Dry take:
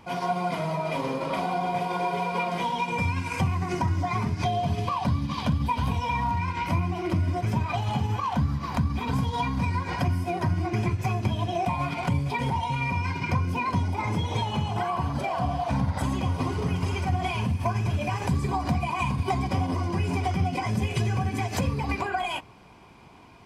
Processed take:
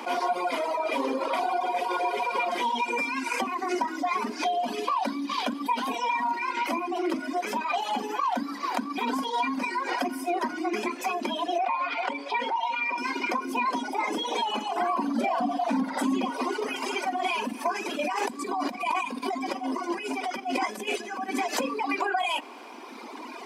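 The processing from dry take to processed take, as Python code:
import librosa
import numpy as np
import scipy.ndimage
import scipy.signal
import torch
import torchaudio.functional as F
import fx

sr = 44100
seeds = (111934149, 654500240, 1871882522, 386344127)

y = fx.bandpass_edges(x, sr, low_hz=480.0, high_hz=4000.0, at=(11.58, 12.98))
y = fx.peak_eq(y, sr, hz=210.0, db=14.0, octaves=0.77, at=(14.8, 16.3))
y = fx.over_compress(y, sr, threshold_db=-31.0, ratio=-1.0, at=(17.99, 21.3))
y = scipy.signal.sosfilt(scipy.signal.cheby1(6, 1.0, 240.0, 'highpass', fs=sr, output='sos'), y)
y = fx.dereverb_blind(y, sr, rt60_s=1.8)
y = fx.env_flatten(y, sr, amount_pct=50)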